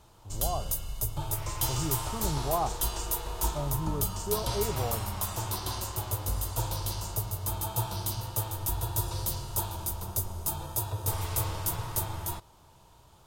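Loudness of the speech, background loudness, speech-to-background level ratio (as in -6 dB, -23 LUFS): -35.5 LUFS, -32.0 LUFS, -3.5 dB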